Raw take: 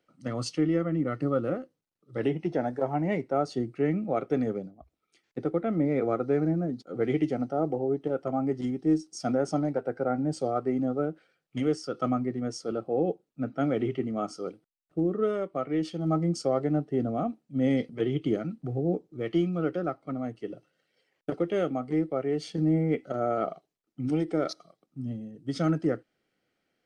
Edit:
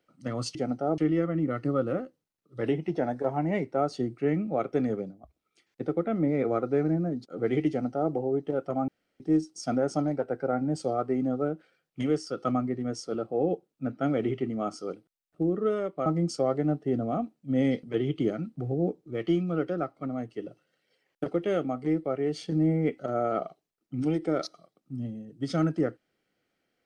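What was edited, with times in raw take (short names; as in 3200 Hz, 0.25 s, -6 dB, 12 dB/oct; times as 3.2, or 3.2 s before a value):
7.26–7.69 copy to 0.55
8.45–8.77 room tone
15.63–16.12 cut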